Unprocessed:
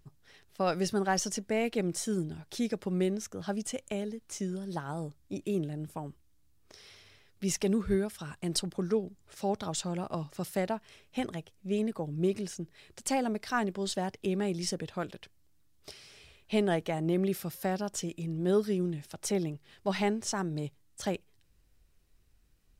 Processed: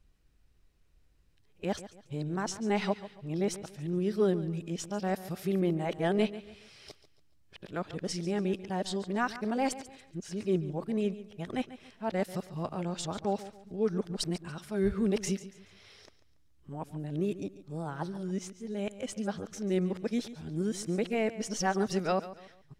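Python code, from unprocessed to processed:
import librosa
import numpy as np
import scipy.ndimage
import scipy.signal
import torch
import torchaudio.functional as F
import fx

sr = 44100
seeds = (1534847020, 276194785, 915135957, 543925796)

p1 = x[::-1].copy()
p2 = fx.high_shelf(p1, sr, hz=7700.0, db=-10.5)
y = p2 + fx.echo_feedback(p2, sr, ms=141, feedback_pct=34, wet_db=-15.0, dry=0)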